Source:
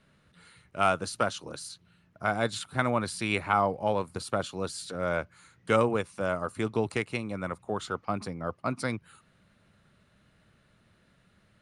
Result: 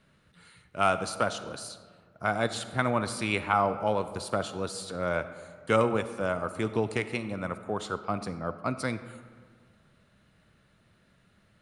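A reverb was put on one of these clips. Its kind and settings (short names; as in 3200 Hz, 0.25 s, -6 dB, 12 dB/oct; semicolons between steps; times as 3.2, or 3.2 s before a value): digital reverb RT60 1.8 s, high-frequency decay 0.5×, pre-delay 10 ms, DRR 11.5 dB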